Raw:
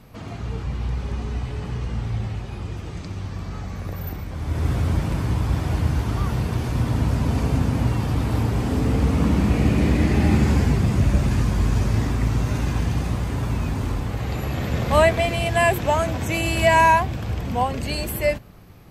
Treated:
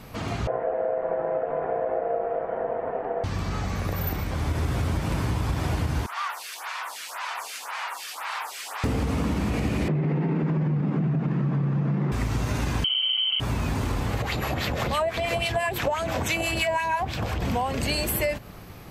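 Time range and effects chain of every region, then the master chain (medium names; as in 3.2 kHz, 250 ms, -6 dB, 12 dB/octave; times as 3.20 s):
0.47–3.24 s: low-pass 1.4 kHz 24 dB/octave + ring modulator 580 Hz
6.06–8.84 s: high-pass 950 Hz 24 dB/octave + lamp-driven phase shifter 1.9 Hz
9.88–12.12 s: peaking EQ 61 Hz +13 dB 0.51 oct + frequency shift +88 Hz + low-pass 1.7 kHz
12.84–13.40 s: tilt EQ -2.5 dB/octave + static phaser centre 860 Hz, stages 8 + frequency inversion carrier 3.1 kHz
14.22–17.42 s: harmonic tremolo 6 Hz, crossover 990 Hz + compression, threshold -25 dBFS + sweeping bell 3.6 Hz 530–4500 Hz +9 dB
whole clip: bass shelf 340 Hz -5.5 dB; peak limiter -16 dBFS; compression, threshold -30 dBFS; trim +7.5 dB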